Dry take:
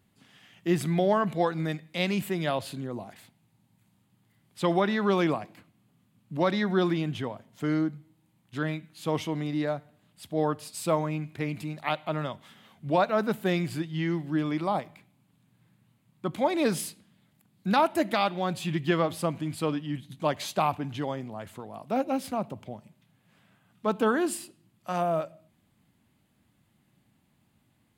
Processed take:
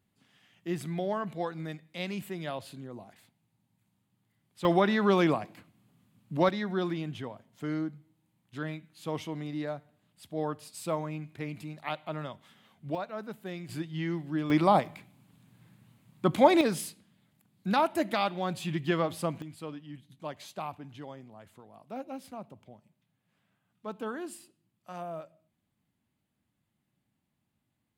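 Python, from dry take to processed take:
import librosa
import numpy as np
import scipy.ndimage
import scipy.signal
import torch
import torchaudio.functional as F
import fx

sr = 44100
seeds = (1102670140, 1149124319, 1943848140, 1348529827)

y = fx.gain(x, sr, db=fx.steps((0.0, -8.0), (4.65, 0.5), (6.49, -6.0), (12.95, -13.0), (13.69, -4.0), (14.5, 5.5), (16.61, -3.0), (19.42, -12.0)))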